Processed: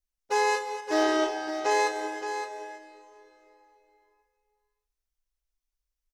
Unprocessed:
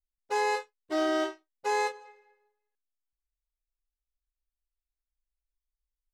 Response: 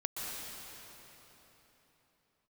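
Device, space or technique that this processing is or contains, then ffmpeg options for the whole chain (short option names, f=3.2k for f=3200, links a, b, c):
keyed gated reverb: -filter_complex "[0:a]equalizer=f=5.8k:w=4.2:g=6,asettb=1/sr,asplit=3[a][b][c];[a]atrim=end=1.034[d];[b]atrim=start=1.03:end=1.71,asetpts=PTS-STARTPTS,afade=t=in:d=0.004:c=qsin,afade=t=out:st=0.676:d=0.004:c=qsin,lowpass=8.2k[e];[c]atrim=start=1.706[f];[d][e]acrossfade=d=0.004:c1=hsin:c2=qsin[g];[g][f]acrossfade=d=0.004:c1=qsin:c2=hsin,asplit=3[h][i][j];[1:a]atrim=start_sample=2205[k];[i][k]afir=irnorm=-1:irlink=0[l];[j]apad=whole_len=270366[m];[l][m]sidechaingate=range=-6dB:threshold=-58dB:ratio=16:detection=peak,volume=-5dB[n];[h][n]amix=inputs=2:normalize=0,aecho=1:1:569:0.335"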